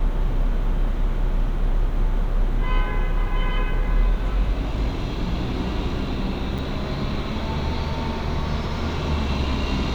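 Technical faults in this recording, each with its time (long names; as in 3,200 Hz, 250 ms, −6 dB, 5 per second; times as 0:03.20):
0:06.58–0:06.59: drop-out 6.1 ms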